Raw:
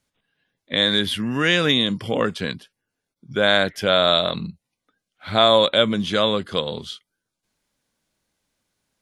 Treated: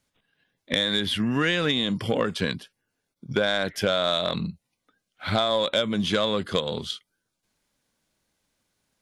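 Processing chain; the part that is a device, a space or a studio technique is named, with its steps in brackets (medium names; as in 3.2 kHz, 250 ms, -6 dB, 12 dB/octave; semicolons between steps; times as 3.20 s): drum-bus smash (transient shaper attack +6 dB, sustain +2 dB; compression 8:1, threshold -18 dBFS, peak gain reduction 11 dB; saturation -11 dBFS, distortion -20 dB); 1.00–1.91 s: treble shelf 9.7 kHz -8.5 dB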